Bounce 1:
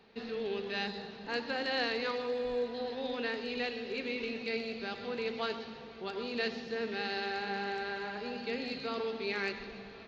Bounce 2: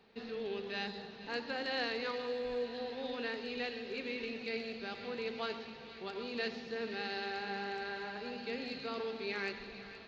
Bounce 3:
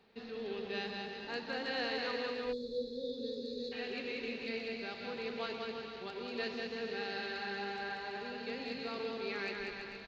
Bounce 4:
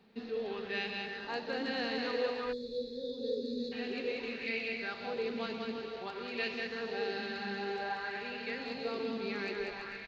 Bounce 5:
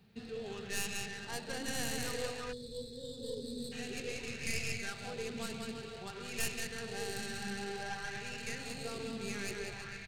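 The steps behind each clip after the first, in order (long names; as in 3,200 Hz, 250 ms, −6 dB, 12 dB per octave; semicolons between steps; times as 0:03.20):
delay with a high-pass on its return 471 ms, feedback 79%, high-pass 1,700 Hz, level −13.5 dB; level −3.5 dB
bouncing-ball delay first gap 190 ms, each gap 0.75×, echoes 5; gain on a spectral selection 0:02.52–0:03.72, 570–3,400 Hz −29 dB; level −2 dB
auto-filter bell 0.54 Hz 200–2,500 Hz +9 dB
stylus tracing distortion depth 0.15 ms; octave-band graphic EQ 125/250/500/1,000/2,000/4,000 Hz +11/−12/−9/−10/−6/−6 dB; level +6.5 dB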